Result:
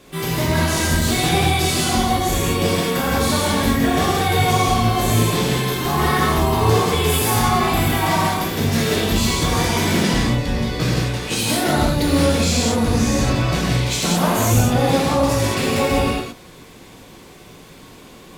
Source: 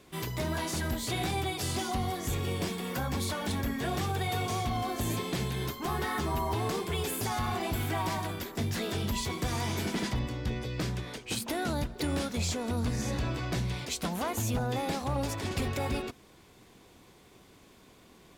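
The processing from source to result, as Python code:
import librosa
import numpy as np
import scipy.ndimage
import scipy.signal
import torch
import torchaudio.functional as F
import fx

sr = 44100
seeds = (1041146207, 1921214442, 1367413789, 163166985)

y = fx.highpass(x, sr, hz=120.0, slope=12, at=(15.41, 15.81))
y = fx.rev_gated(y, sr, seeds[0], gate_ms=240, shape='flat', drr_db=-6.5)
y = F.gain(torch.from_numpy(y), 7.5).numpy()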